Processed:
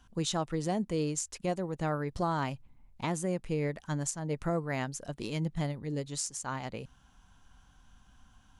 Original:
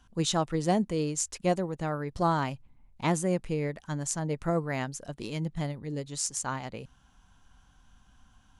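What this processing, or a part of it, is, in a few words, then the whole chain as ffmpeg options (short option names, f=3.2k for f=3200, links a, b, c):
stacked limiters: -af "alimiter=limit=-17.5dB:level=0:latency=1:release=313,alimiter=limit=-21.5dB:level=0:latency=1:release=243"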